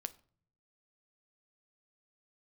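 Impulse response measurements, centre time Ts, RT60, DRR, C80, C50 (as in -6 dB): 2 ms, 0.50 s, 12.0 dB, 24.0 dB, 20.0 dB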